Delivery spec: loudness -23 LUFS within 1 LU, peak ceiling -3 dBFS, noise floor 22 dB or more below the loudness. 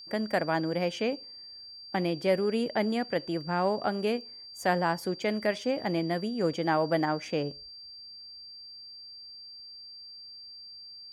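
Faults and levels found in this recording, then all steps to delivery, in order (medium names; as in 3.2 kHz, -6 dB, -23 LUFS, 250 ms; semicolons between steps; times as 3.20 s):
steady tone 4.7 kHz; tone level -44 dBFS; loudness -29.5 LUFS; peak level -13.5 dBFS; loudness target -23.0 LUFS
-> band-stop 4.7 kHz, Q 30; trim +6.5 dB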